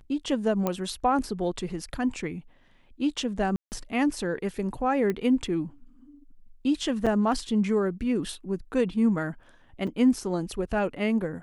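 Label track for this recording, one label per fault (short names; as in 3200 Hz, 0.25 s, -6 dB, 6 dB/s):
0.670000	0.670000	pop -13 dBFS
3.560000	3.720000	gap 0.159 s
5.100000	5.100000	pop -17 dBFS
7.060000	7.070000	gap 6 ms
9.870000	9.870000	gap 4.9 ms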